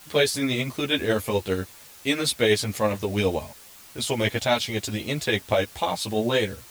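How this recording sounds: tremolo triangle 12 Hz, depth 45%; a quantiser's noise floor 8-bit, dither triangular; a shimmering, thickened sound

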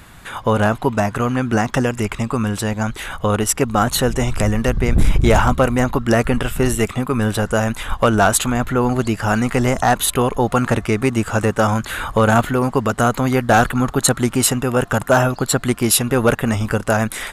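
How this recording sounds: noise floor -36 dBFS; spectral tilt -5.0 dB/octave

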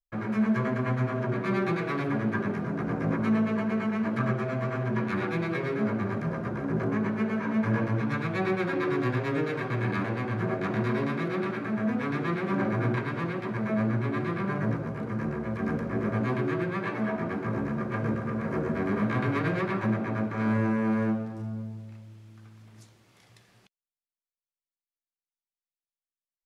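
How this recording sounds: noise floor -96 dBFS; spectral tilt -5.0 dB/octave

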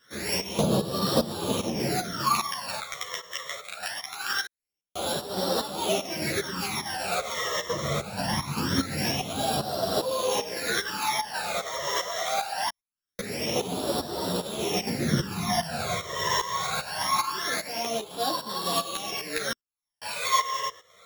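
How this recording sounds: a buzz of ramps at a fixed pitch in blocks of 8 samples; phasing stages 12, 0.23 Hz, lowest notch 250–2200 Hz; tremolo saw up 2.5 Hz, depth 80%; a shimmering, thickened sound

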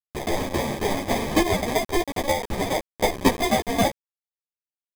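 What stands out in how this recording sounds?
aliases and images of a low sample rate 1.4 kHz, jitter 0%; tremolo saw down 3.7 Hz, depth 80%; a quantiser's noise floor 6-bit, dither none; a shimmering, thickened sound

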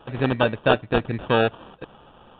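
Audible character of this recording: aliases and images of a low sample rate 2.1 kHz, jitter 0%; µ-law

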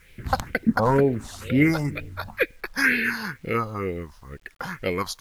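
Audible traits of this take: phasing stages 4, 2.1 Hz, lowest notch 370–1100 Hz; a quantiser's noise floor 10-bit, dither none

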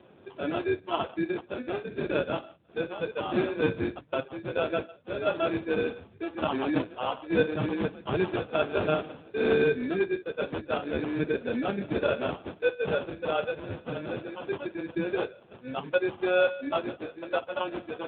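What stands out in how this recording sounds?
aliases and images of a low sample rate 2 kHz, jitter 0%; AMR-NB

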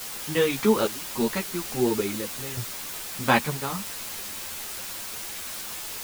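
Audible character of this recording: random-step tremolo, depth 90%; a quantiser's noise floor 6-bit, dither triangular; a shimmering, thickened sound

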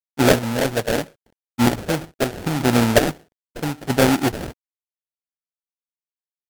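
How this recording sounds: a quantiser's noise floor 10-bit, dither none; chopped level 0.77 Hz, depth 60%, duty 30%; aliases and images of a low sample rate 1.1 kHz, jitter 20%; MP3

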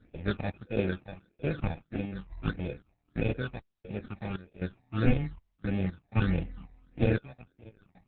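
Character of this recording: random-step tremolo 3.9 Hz, depth 100%; aliases and images of a low sample rate 1 kHz, jitter 0%; phasing stages 8, 1.6 Hz, lowest notch 400–1300 Hz; Opus

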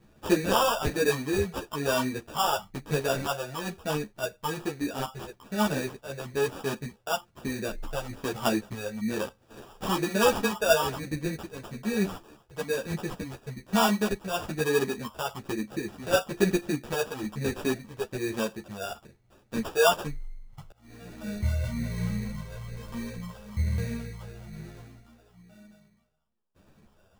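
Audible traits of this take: phasing stages 4, 1.1 Hz, lowest notch 230–4700 Hz; aliases and images of a low sample rate 2.1 kHz, jitter 0%; a shimmering, thickened sound

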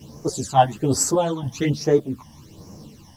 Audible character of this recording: phasing stages 12, 1.2 Hz, lowest notch 410–3500 Hz; a quantiser's noise floor 12-bit, dither triangular; random-step tremolo; a shimmering, thickened sound

